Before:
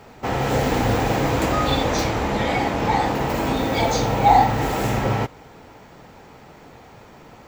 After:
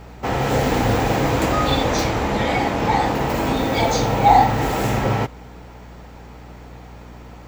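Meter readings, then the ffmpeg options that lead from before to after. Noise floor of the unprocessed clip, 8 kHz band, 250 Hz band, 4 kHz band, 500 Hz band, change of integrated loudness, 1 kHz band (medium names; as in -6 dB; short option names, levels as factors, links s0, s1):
-46 dBFS, +1.5 dB, +1.5 dB, +1.5 dB, +1.5 dB, +1.5 dB, +1.5 dB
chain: -af "aeval=exprs='val(0)+0.00891*(sin(2*PI*60*n/s)+sin(2*PI*2*60*n/s)/2+sin(2*PI*3*60*n/s)/3+sin(2*PI*4*60*n/s)/4+sin(2*PI*5*60*n/s)/5)':c=same,volume=1.19"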